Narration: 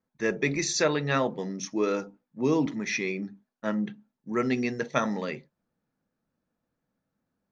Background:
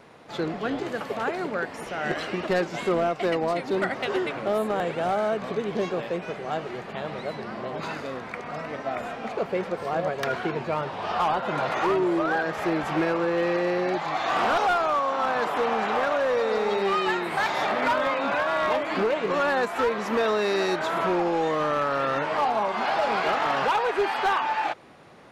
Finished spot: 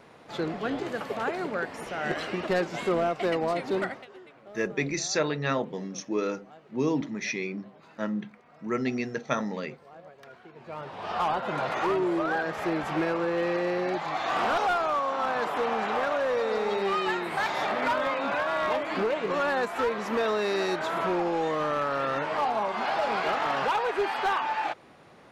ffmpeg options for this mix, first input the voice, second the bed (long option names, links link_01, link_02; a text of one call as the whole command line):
ffmpeg -i stem1.wav -i stem2.wav -filter_complex "[0:a]adelay=4350,volume=-2dB[link_01];[1:a]volume=17dB,afade=type=out:start_time=3.76:duration=0.3:silence=0.1,afade=type=in:start_time=10.54:duration=0.68:silence=0.112202[link_02];[link_01][link_02]amix=inputs=2:normalize=0" out.wav